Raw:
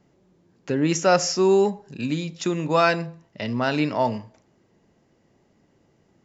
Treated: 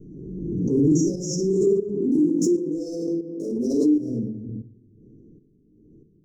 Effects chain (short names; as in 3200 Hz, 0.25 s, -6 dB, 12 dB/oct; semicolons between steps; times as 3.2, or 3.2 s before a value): Wiener smoothing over 25 samples; 1.48–3.94 HPF 270 Hz 24 dB/oct; reverb RT60 0.80 s, pre-delay 3 ms, DRR -10.5 dB; dynamic EQ 4000 Hz, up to +5 dB, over -38 dBFS, Q 3; step gate "..x...xxx.." 117 bpm -12 dB; transient shaper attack -8 dB, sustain +2 dB; compressor 6:1, threshold -16 dBFS, peak gain reduction 12.5 dB; Chebyshev band-stop 450–5800 Hz, order 5; backwards sustainer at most 34 dB/s